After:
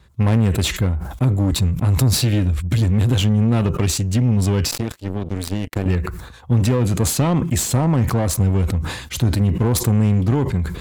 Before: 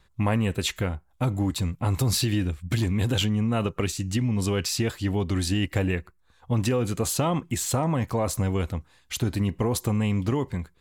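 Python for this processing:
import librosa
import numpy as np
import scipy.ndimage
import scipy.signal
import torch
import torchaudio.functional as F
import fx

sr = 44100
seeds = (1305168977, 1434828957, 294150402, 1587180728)

p1 = fx.diode_clip(x, sr, knee_db=-27.5)
p2 = scipy.signal.sosfilt(scipy.signal.butter(4, 41.0, 'highpass', fs=sr, output='sos'), p1)
p3 = fx.low_shelf(p2, sr, hz=350.0, db=8.0)
p4 = fx.power_curve(p3, sr, exponent=3.0, at=(4.71, 5.86))
p5 = np.clip(p4, -10.0 ** (-24.5 / 20.0), 10.0 ** (-24.5 / 20.0))
p6 = p4 + (p5 * 10.0 ** (-6.0 / 20.0))
p7 = fx.sustainer(p6, sr, db_per_s=64.0)
y = p7 * 10.0 ** (2.0 / 20.0)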